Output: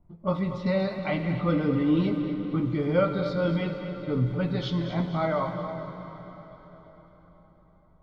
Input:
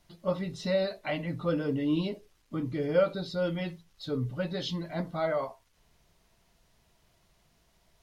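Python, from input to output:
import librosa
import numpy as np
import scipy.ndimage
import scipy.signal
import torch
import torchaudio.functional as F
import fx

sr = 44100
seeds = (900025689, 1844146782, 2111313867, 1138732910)

p1 = fx.env_lowpass(x, sr, base_hz=550.0, full_db=-28.5)
p2 = fx.lowpass(p1, sr, hz=2200.0, slope=6)
p3 = p2 + 0.39 * np.pad(p2, (int(0.9 * sr / 1000.0), 0))[:len(p2)]
p4 = p3 + fx.echo_split(p3, sr, split_hz=360.0, low_ms=325, high_ms=234, feedback_pct=52, wet_db=-11.0, dry=0)
p5 = fx.rev_plate(p4, sr, seeds[0], rt60_s=4.7, hf_ratio=0.8, predelay_ms=0, drr_db=7.0)
y = p5 * librosa.db_to_amplitude(4.5)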